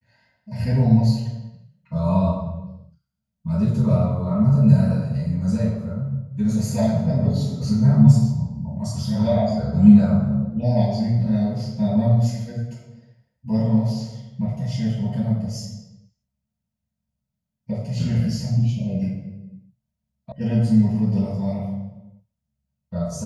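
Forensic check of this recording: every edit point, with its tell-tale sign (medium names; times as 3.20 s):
20.32 s: sound stops dead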